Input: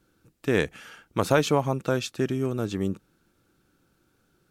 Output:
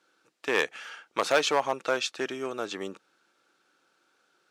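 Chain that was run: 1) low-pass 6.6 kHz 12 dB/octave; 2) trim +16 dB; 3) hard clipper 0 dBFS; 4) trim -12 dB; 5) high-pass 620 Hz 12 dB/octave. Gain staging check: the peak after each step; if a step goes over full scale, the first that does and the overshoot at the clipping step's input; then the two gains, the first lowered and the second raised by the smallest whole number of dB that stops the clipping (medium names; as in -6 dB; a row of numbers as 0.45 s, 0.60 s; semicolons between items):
-8.5 dBFS, +7.5 dBFS, 0.0 dBFS, -12.0 dBFS, -7.5 dBFS; step 2, 7.5 dB; step 2 +8 dB, step 4 -4 dB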